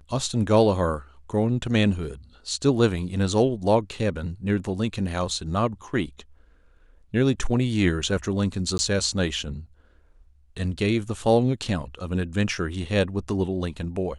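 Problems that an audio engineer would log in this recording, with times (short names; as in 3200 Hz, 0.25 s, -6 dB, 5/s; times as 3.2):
8.78–8.79 gap 10 ms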